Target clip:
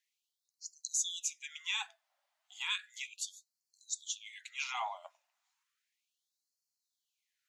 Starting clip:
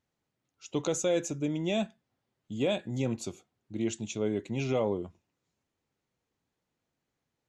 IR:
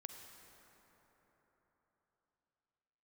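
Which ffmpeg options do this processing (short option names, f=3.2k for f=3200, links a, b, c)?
-af "afftfilt=real='re*gte(b*sr/1024,550*pow(4200/550,0.5+0.5*sin(2*PI*0.34*pts/sr)))':imag='im*gte(b*sr/1024,550*pow(4200/550,0.5+0.5*sin(2*PI*0.34*pts/sr)))':win_size=1024:overlap=0.75,volume=3.5dB"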